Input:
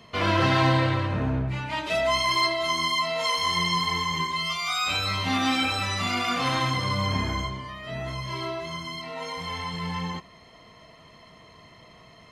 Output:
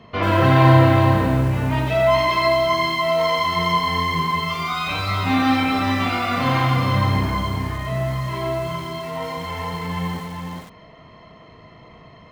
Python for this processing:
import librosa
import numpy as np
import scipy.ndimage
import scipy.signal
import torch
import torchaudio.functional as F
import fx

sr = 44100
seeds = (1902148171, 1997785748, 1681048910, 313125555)

y = fx.spacing_loss(x, sr, db_at_10k=26)
y = fx.doubler(y, sr, ms=38.0, db=-9.5)
y = y + 10.0 ** (-5.5 / 20.0) * np.pad(y, (int(416 * sr / 1000.0), 0))[:len(y)]
y = fx.echo_crushed(y, sr, ms=91, feedback_pct=35, bits=7, wet_db=-8)
y = y * librosa.db_to_amplitude(6.5)